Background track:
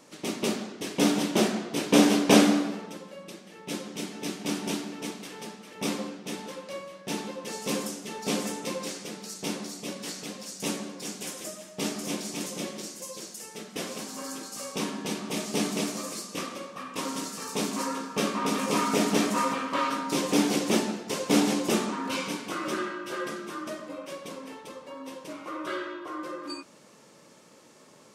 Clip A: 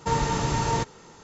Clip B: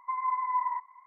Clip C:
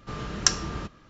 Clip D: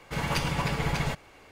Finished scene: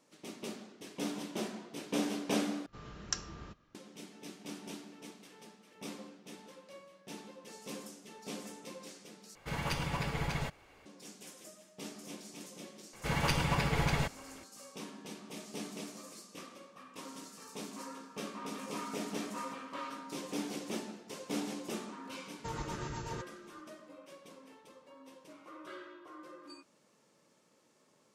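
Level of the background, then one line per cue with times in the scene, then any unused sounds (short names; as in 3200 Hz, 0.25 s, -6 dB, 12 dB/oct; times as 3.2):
background track -14.5 dB
0.88 add B -15 dB + steep low-pass 860 Hz 72 dB/oct
2.66 replace with C -14.5 dB
9.35 replace with D -7 dB
12.93 add D -2.5 dB
22.38 add A -14 dB + rotary speaker horn 8 Hz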